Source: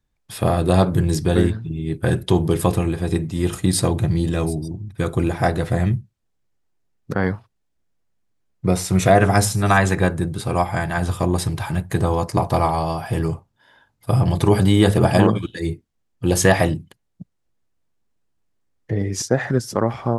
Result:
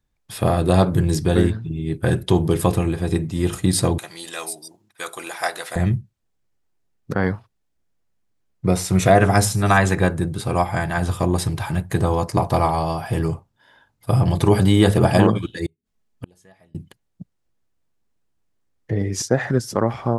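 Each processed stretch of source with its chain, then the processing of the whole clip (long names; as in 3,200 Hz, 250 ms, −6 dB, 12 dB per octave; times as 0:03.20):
0:03.98–0:05.76: high-pass filter 860 Hz + high-shelf EQ 3,900 Hz +8.5 dB + one half of a high-frequency compander decoder only
0:15.66–0:16.75: comb filter 4.7 ms, depth 41% + gate with flip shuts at −20 dBFS, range −38 dB
whole clip: no processing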